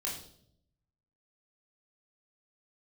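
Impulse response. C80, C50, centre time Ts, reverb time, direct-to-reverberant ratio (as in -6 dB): 9.5 dB, 5.5 dB, 34 ms, 0.65 s, -4.0 dB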